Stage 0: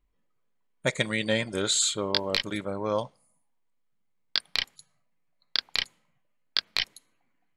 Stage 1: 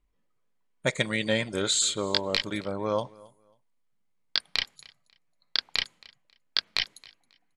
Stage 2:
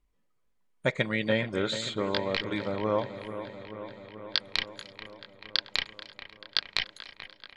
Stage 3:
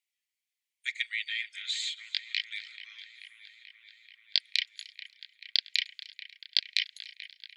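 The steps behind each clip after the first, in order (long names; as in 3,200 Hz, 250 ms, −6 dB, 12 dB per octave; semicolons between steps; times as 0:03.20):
low-pass filter 11,000 Hz 12 dB per octave; repeating echo 271 ms, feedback 23%, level −23.5 dB
treble cut that deepens with the level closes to 2,800 Hz, closed at −25 dBFS; delay with a low-pass on its return 435 ms, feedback 71%, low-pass 2,700 Hz, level −11.5 dB
Butterworth high-pass 2,000 Hz 48 dB per octave; level +1.5 dB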